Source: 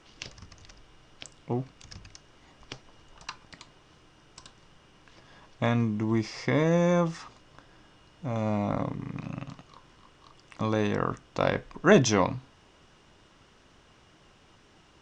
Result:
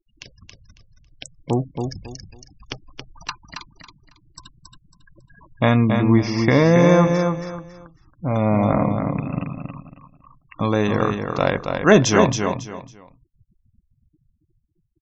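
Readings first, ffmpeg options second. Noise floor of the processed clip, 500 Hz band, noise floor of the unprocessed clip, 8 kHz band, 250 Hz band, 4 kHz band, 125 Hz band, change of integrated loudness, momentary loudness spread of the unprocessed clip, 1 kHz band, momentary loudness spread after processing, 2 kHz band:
-67 dBFS, +8.5 dB, -59 dBFS, +7.0 dB, +9.5 dB, +7.5 dB, +10.0 dB, +8.5 dB, 21 LU, +9.0 dB, 22 LU, +8.0 dB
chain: -af "afftfilt=real='re*gte(hypot(re,im),0.00794)':imag='im*gte(hypot(re,im),0.00794)':win_size=1024:overlap=0.75,dynaudnorm=f=130:g=17:m=3.16,aecho=1:1:275|550|825:0.531|0.138|0.0359"

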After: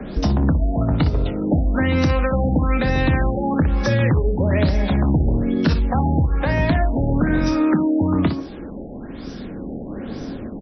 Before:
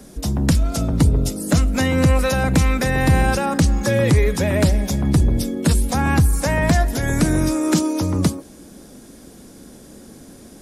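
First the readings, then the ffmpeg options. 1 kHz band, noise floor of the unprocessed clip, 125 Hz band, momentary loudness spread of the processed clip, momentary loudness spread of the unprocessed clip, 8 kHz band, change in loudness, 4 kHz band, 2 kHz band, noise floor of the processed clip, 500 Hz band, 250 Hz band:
-1.0 dB, -43 dBFS, -1.0 dB, 13 LU, 4 LU, under -15 dB, -1.0 dB, -5.0 dB, -2.5 dB, -33 dBFS, -1.0 dB, +0.5 dB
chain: -filter_complex "[0:a]asplit=2[s0][s1];[s1]acompressor=threshold=0.0355:ratio=6,volume=1.12[s2];[s0][s2]amix=inputs=2:normalize=0,aphaser=in_gain=1:out_gain=1:delay=3.9:decay=0.22:speed=0.2:type=sinusoidal,aecho=1:1:26|59:0.251|0.316,acrossover=split=320|770|2900[s3][s4][s5][s6];[s3]acompressor=threshold=0.1:ratio=4[s7];[s4]acompressor=threshold=0.0316:ratio=4[s8];[s5]acompressor=threshold=0.0316:ratio=4[s9];[s6]acompressor=threshold=0.0224:ratio=4[s10];[s7][s8][s9][s10]amix=inputs=4:normalize=0,afftfilt=real='re*lt(b*sr/1024,840*pow(6100/840,0.5+0.5*sin(2*PI*1.1*pts/sr)))':imag='im*lt(b*sr/1024,840*pow(6100/840,0.5+0.5*sin(2*PI*1.1*pts/sr)))':win_size=1024:overlap=0.75,volume=1.41"

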